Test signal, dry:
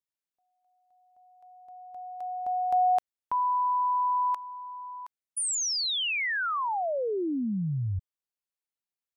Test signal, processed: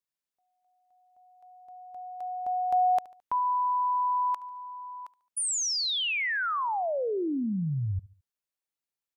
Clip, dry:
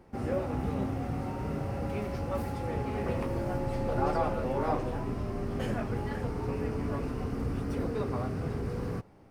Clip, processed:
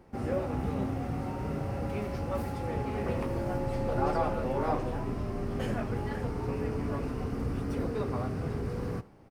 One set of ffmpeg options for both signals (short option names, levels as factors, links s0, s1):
-af "aecho=1:1:72|144|216:0.0891|0.0392|0.0173"